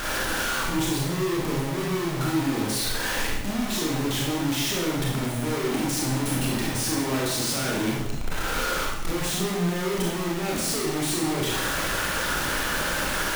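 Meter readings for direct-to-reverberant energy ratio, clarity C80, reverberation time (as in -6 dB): -3.5 dB, 4.0 dB, 0.85 s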